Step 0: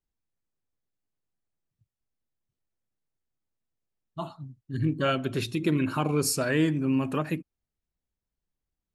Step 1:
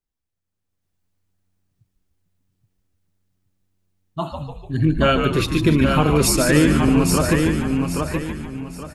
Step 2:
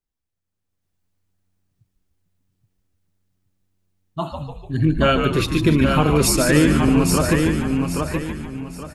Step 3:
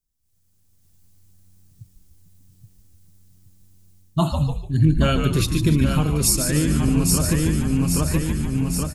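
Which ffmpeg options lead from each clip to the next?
ffmpeg -i in.wav -filter_complex "[0:a]asplit=2[link_01][link_02];[link_02]aecho=0:1:824|1648|2472|3296:0.562|0.163|0.0473|0.0137[link_03];[link_01][link_03]amix=inputs=2:normalize=0,dynaudnorm=framelen=460:gausssize=3:maxgain=9dB,asplit=2[link_04][link_05];[link_05]asplit=6[link_06][link_07][link_08][link_09][link_10][link_11];[link_06]adelay=147,afreqshift=-93,volume=-6.5dB[link_12];[link_07]adelay=294,afreqshift=-186,volume=-12.5dB[link_13];[link_08]adelay=441,afreqshift=-279,volume=-18.5dB[link_14];[link_09]adelay=588,afreqshift=-372,volume=-24.6dB[link_15];[link_10]adelay=735,afreqshift=-465,volume=-30.6dB[link_16];[link_11]adelay=882,afreqshift=-558,volume=-36.6dB[link_17];[link_12][link_13][link_14][link_15][link_16][link_17]amix=inputs=6:normalize=0[link_18];[link_04][link_18]amix=inputs=2:normalize=0" out.wav
ffmpeg -i in.wav -af anull out.wav
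ffmpeg -i in.wav -af "bass=frequency=250:gain=11,treble=frequency=4000:gain=14,dynaudnorm=framelen=180:gausssize=3:maxgain=13dB,volume=-6dB" out.wav

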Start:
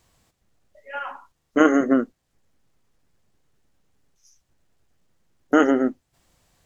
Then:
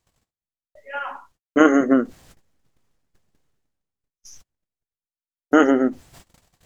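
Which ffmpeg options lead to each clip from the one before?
ffmpeg -i in.wav -af "agate=range=-47dB:threshold=-58dB:ratio=16:detection=peak,areverse,acompressor=mode=upward:threshold=-34dB:ratio=2.5,areverse,volume=2dB" out.wav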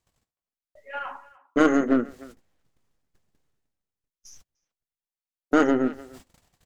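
ffmpeg -i in.wav -filter_complex "[0:a]aeval=exprs='0.891*(cos(1*acos(clip(val(0)/0.891,-1,1)))-cos(1*PI/2))+0.112*(cos(3*acos(clip(val(0)/0.891,-1,1)))-cos(3*PI/2))+0.0224*(cos(8*acos(clip(val(0)/0.891,-1,1)))-cos(8*PI/2))':channel_layout=same,asplit=2[link_01][link_02];[link_02]adelay=300,highpass=300,lowpass=3400,asoftclip=type=hard:threshold=-9dB,volume=-21dB[link_03];[link_01][link_03]amix=inputs=2:normalize=0,asoftclip=type=tanh:threshold=-9.5dB" out.wav

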